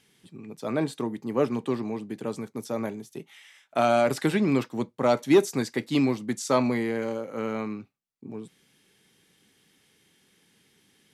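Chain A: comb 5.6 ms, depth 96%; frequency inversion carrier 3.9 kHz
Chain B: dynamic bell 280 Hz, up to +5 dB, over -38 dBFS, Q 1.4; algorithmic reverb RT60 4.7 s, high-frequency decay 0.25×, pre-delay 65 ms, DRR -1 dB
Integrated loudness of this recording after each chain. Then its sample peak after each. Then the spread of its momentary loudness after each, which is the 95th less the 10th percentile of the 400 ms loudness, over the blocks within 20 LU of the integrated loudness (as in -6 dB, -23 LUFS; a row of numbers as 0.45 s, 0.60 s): -21.0 LUFS, -20.0 LUFS; -3.0 dBFS, -3.0 dBFS; 18 LU, 15 LU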